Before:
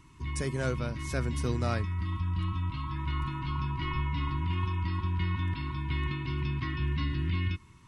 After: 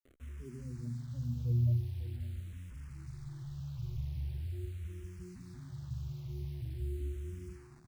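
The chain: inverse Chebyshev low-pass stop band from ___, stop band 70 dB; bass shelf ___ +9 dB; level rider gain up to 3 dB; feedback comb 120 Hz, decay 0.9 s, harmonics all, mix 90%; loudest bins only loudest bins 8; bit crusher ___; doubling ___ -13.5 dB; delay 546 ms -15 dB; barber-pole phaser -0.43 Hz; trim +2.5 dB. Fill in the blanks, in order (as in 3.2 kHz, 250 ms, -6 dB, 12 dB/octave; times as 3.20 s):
2.7 kHz, 98 Hz, 10-bit, 15 ms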